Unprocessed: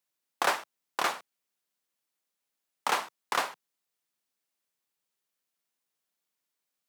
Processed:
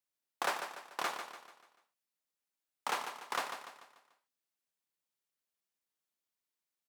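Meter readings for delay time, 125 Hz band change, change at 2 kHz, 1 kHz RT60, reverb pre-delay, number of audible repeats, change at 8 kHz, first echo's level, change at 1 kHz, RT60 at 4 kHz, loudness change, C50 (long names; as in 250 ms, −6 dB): 146 ms, can't be measured, −7.0 dB, no reverb audible, no reverb audible, 4, −7.0 dB, −8.5 dB, −7.0 dB, no reverb audible, −7.5 dB, no reverb audible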